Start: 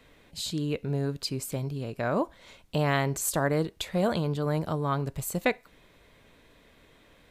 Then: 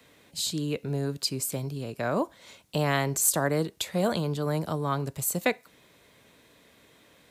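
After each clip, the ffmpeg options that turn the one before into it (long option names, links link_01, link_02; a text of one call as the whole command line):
ffmpeg -i in.wav -filter_complex "[0:a]highpass=100,acrossover=split=290|570|4700[link_01][link_02][link_03][link_04];[link_04]acontrast=79[link_05];[link_01][link_02][link_03][link_05]amix=inputs=4:normalize=0" out.wav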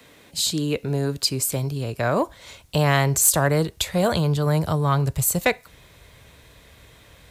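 ffmpeg -i in.wav -filter_complex "[0:a]asubboost=boost=11:cutoff=75,asplit=2[link_01][link_02];[link_02]aeval=exprs='0.299*sin(PI/2*1.58*val(0)/0.299)':channel_layout=same,volume=-5.5dB[link_03];[link_01][link_03]amix=inputs=2:normalize=0" out.wav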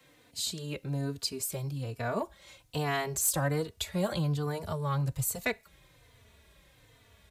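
ffmpeg -i in.wav -filter_complex "[0:a]asplit=2[link_01][link_02];[link_02]adelay=3.3,afreqshift=-1.2[link_03];[link_01][link_03]amix=inputs=2:normalize=1,volume=-7.5dB" out.wav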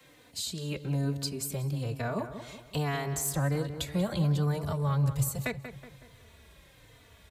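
ffmpeg -i in.wav -filter_complex "[0:a]acrossover=split=240[link_01][link_02];[link_02]acompressor=threshold=-40dB:ratio=2[link_03];[link_01][link_03]amix=inputs=2:normalize=0,asplit=2[link_04][link_05];[link_05]adelay=186,lowpass=frequency=2400:poles=1,volume=-9.5dB,asplit=2[link_06][link_07];[link_07]adelay=186,lowpass=frequency=2400:poles=1,volume=0.48,asplit=2[link_08][link_09];[link_09]adelay=186,lowpass=frequency=2400:poles=1,volume=0.48,asplit=2[link_10][link_11];[link_11]adelay=186,lowpass=frequency=2400:poles=1,volume=0.48,asplit=2[link_12][link_13];[link_13]adelay=186,lowpass=frequency=2400:poles=1,volume=0.48[link_14];[link_04][link_06][link_08][link_10][link_12][link_14]amix=inputs=6:normalize=0,volume=3.5dB" out.wav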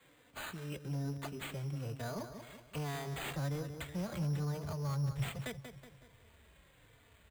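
ffmpeg -i in.wav -filter_complex "[0:a]acrossover=split=140[link_01][link_02];[link_02]asoftclip=type=tanh:threshold=-27.5dB[link_03];[link_01][link_03]amix=inputs=2:normalize=0,acrusher=samples=8:mix=1:aa=0.000001,volume=-7dB" out.wav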